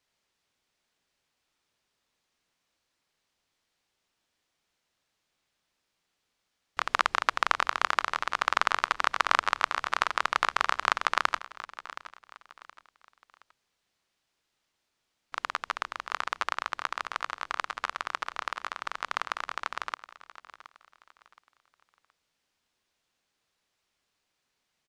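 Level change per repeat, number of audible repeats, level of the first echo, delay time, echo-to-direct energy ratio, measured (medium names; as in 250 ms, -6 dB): -9.5 dB, 2, -16.0 dB, 721 ms, -15.5 dB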